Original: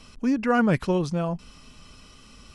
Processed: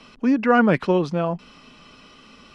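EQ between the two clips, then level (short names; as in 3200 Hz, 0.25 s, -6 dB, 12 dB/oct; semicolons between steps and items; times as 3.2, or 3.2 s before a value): three-band isolator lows -16 dB, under 170 Hz, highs -17 dB, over 4400 Hz; +5.5 dB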